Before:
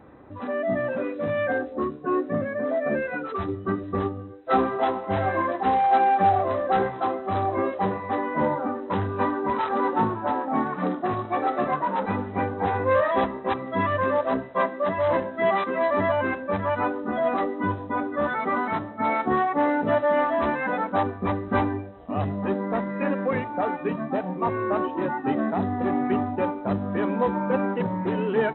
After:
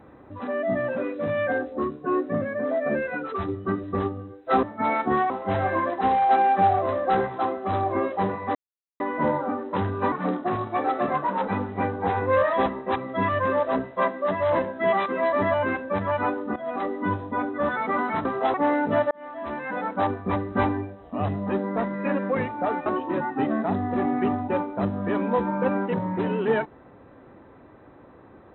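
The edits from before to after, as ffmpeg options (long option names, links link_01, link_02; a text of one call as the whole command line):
ffmpeg -i in.wav -filter_complex "[0:a]asplit=10[link_01][link_02][link_03][link_04][link_05][link_06][link_07][link_08][link_09][link_10];[link_01]atrim=end=4.632[link_11];[link_02]atrim=start=18.828:end=19.502[link_12];[link_03]atrim=start=4.918:end=8.17,asetpts=PTS-STARTPTS,afade=type=out:start_time=3.248:duration=0.004:curve=hsin,apad=pad_dur=0.45[link_13];[link_04]atrim=start=8.17:end=9.292,asetpts=PTS-STARTPTS,afade=type=in:duration=0.004:curve=hsin[link_14];[link_05]atrim=start=10.698:end=17.14,asetpts=PTS-STARTPTS,afade=type=out:start_time=6.438:duration=0.004:curve=hsin:silence=0.188365[link_15];[link_06]atrim=start=17.14:end=18.832,asetpts=PTS-STARTPTS,afade=type=in:duration=0.41:silence=0.188365[link_16];[link_07]atrim=start=4.628:end=4.922[link_17];[link_08]atrim=start=19.498:end=20.07,asetpts=PTS-STARTPTS,afade=type=out:start_time=0.568:duration=0.004:curve=hsin[link_18];[link_09]atrim=start=20.07:end=23.822,asetpts=PTS-STARTPTS,afade=type=in:duration=0.98[link_19];[link_10]atrim=start=24.738[link_20];[link_11][link_12]acrossfade=duration=0.004:curve1=hsin:curve2=hsin[link_21];[link_13][link_14]concat=n=2:v=0:a=1[link_22];[link_21][link_22]acrossfade=duration=0.004:curve1=hsin:curve2=hsin[link_23];[link_15][link_16]concat=n=2:v=0:a=1[link_24];[link_23][link_24]acrossfade=duration=0.004:curve1=hsin:curve2=hsin[link_25];[link_25][link_17]acrossfade=duration=0.004:curve1=hsin:curve2=hsin[link_26];[link_18][link_19]concat=n=2:v=0:a=1[link_27];[link_26][link_27]acrossfade=duration=0.004:curve1=hsin:curve2=hsin[link_28];[link_28][link_20]acrossfade=duration=0.004:curve1=hsin:curve2=hsin" out.wav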